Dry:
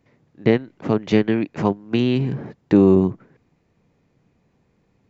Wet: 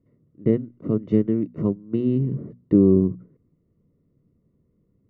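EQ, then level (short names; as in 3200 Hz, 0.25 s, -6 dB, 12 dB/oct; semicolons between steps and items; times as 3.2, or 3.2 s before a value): running mean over 54 samples; notches 60/120/180/240 Hz; 0.0 dB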